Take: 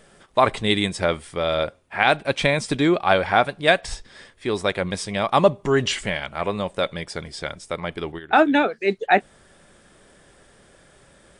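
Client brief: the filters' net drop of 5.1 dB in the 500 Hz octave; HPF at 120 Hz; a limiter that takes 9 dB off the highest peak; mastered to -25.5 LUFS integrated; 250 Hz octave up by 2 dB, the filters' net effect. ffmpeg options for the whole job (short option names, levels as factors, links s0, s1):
-af "highpass=120,equalizer=f=250:t=o:g=6,equalizer=f=500:t=o:g=-8.5,alimiter=limit=0.282:level=0:latency=1"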